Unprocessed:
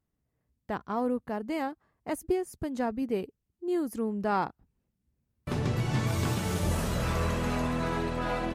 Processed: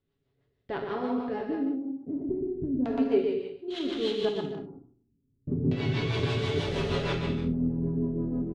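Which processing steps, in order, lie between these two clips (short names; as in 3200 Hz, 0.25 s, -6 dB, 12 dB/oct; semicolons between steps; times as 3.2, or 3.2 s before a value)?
spectral trails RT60 0.44 s; bell 400 Hz +11 dB 0.44 oct; notches 60/120/180/240/300/360/420 Hz; comb 7.2 ms, depth 54%; in parallel at +0.5 dB: compressor, threshold -34 dBFS, peak gain reduction 17.5 dB; 3.7–4.25 on the sum: sample-rate reducer 3600 Hz, jitter 20%; LFO low-pass square 0.35 Hz 250–3600 Hz; on a send: bouncing-ball echo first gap 0.12 s, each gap 0.7×, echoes 5; on the sum: rotary speaker horn 6.3 Hz; non-linear reverb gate 90 ms flat, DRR 6.5 dB; gain -6.5 dB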